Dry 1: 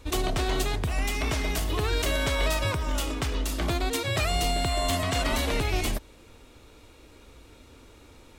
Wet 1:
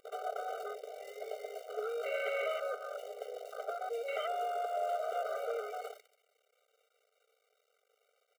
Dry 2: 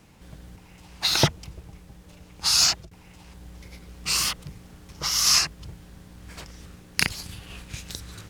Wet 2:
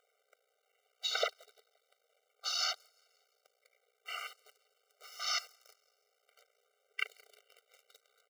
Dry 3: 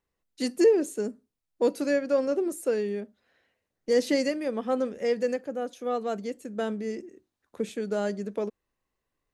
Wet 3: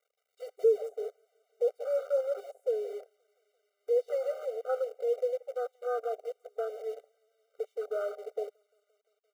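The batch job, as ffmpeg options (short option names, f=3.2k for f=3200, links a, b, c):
-af "bass=f=250:g=4,treble=f=4k:g=-10,aecho=1:1:173|346|519|692|865:0.158|0.084|0.0445|0.0236|0.0125,asoftclip=type=tanh:threshold=-10dB,acompressor=mode=upward:threshold=-35dB:ratio=2.5,acrusher=bits=6:dc=4:mix=0:aa=0.000001,afwtdn=0.0355,afftfilt=real='re*eq(mod(floor(b*sr/1024/390),2),1)':imag='im*eq(mod(floor(b*sr/1024/390),2),1)':win_size=1024:overlap=0.75,volume=-3dB"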